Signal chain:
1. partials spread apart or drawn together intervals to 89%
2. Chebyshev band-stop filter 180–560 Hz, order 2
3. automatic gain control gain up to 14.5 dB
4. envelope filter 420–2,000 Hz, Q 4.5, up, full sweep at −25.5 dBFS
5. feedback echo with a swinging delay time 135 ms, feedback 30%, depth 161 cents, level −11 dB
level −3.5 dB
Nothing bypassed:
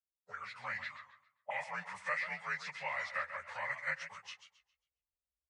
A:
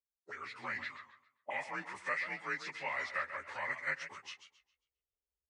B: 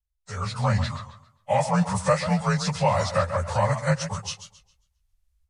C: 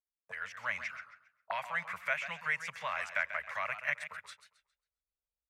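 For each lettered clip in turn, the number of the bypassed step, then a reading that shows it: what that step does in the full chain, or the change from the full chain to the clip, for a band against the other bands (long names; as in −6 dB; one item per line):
2, 250 Hz band +6.5 dB
4, 2 kHz band −19.5 dB
1, 125 Hz band −1.5 dB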